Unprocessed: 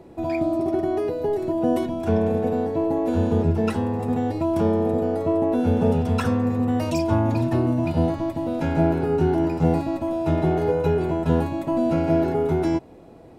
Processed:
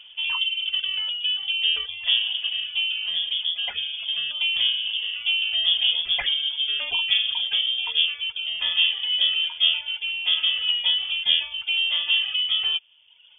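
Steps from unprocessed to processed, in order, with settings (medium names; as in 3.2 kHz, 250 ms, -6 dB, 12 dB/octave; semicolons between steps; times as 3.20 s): reverb removal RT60 1.3 s; 2.89–4.15 s: compression, threshold -23 dBFS, peak gain reduction 6 dB; frequency inversion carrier 3.4 kHz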